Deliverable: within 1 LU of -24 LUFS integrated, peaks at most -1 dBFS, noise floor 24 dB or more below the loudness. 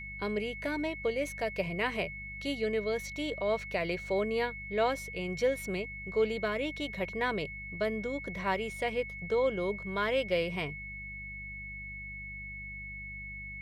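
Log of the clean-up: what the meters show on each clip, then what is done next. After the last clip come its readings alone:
hum 50 Hz; highest harmonic 200 Hz; hum level -45 dBFS; steady tone 2.2 kHz; tone level -41 dBFS; loudness -33.5 LUFS; peak level -16.5 dBFS; loudness target -24.0 LUFS
-> de-hum 50 Hz, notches 4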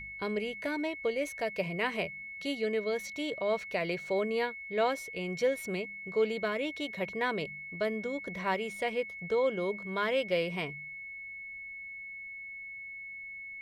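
hum not found; steady tone 2.2 kHz; tone level -41 dBFS
-> band-stop 2.2 kHz, Q 30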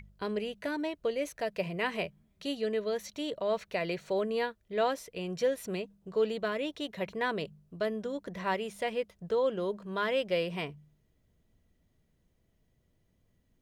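steady tone not found; loudness -33.5 LUFS; peak level -17.5 dBFS; loudness target -24.0 LUFS
-> trim +9.5 dB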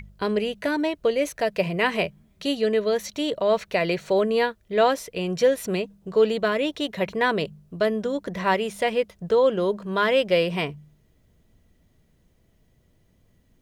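loudness -24.0 LUFS; peak level -8.0 dBFS; noise floor -63 dBFS

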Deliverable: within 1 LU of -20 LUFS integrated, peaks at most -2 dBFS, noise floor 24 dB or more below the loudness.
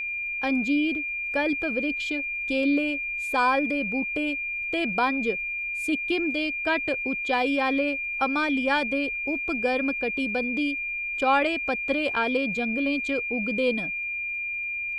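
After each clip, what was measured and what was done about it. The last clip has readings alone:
tick rate 27 per s; steady tone 2.4 kHz; tone level -28 dBFS; loudness -25.5 LUFS; peak level -10.0 dBFS; loudness target -20.0 LUFS
-> de-click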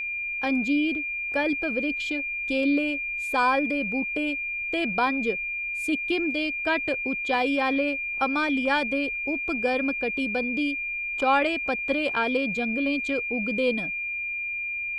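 tick rate 0 per s; steady tone 2.4 kHz; tone level -28 dBFS
-> band-stop 2.4 kHz, Q 30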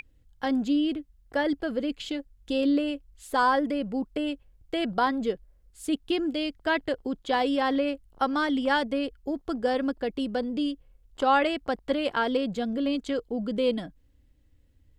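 steady tone not found; loudness -28.0 LUFS; peak level -10.5 dBFS; loudness target -20.0 LUFS
-> trim +8 dB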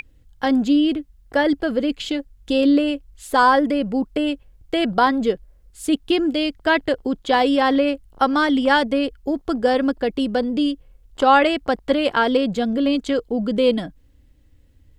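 loudness -20.0 LUFS; peak level -2.5 dBFS; noise floor -54 dBFS

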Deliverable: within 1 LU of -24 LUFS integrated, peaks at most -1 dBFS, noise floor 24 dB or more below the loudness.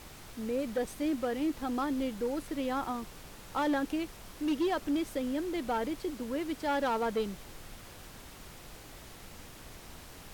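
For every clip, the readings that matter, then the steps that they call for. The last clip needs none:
clipped samples 1.0%; clipping level -25.0 dBFS; noise floor -50 dBFS; noise floor target -58 dBFS; loudness -33.5 LUFS; peak level -25.0 dBFS; loudness target -24.0 LUFS
-> clip repair -25 dBFS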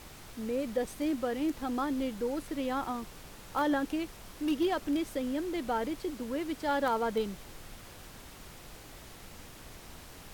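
clipped samples 0.0%; noise floor -50 dBFS; noise floor target -57 dBFS
-> noise print and reduce 7 dB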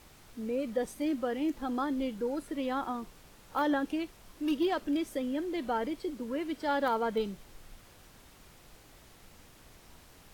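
noise floor -57 dBFS; loudness -33.0 LUFS; peak level -18.0 dBFS; loudness target -24.0 LUFS
-> trim +9 dB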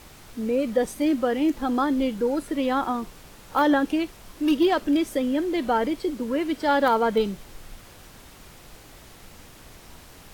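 loudness -24.0 LUFS; peak level -9.0 dBFS; noise floor -48 dBFS

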